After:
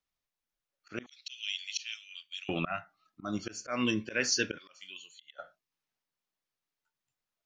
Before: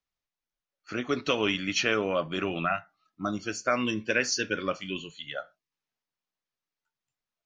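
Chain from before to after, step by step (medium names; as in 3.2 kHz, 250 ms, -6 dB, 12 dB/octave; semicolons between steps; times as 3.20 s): slow attack 160 ms; 1.06–2.49 s: inverse Chebyshev high-pass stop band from 910 Hz, stop band 60 dB; 4.58–5.39 s: differentiator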